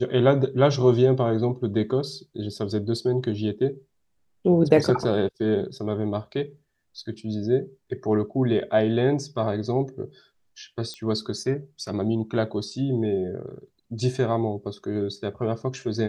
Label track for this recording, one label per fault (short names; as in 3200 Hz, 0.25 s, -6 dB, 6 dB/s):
10.940000	10.940000	pop -23 dBFS